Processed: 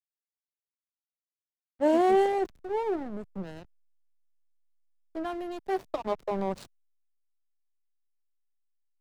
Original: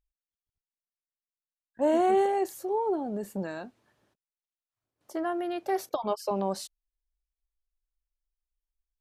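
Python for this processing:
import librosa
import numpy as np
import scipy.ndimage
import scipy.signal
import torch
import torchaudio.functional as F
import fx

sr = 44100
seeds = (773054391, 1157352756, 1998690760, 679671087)

y = fx.backlash(x, sr, play_db=-29.5)
y = fx.band_widen(y, sr, depth_pct=40)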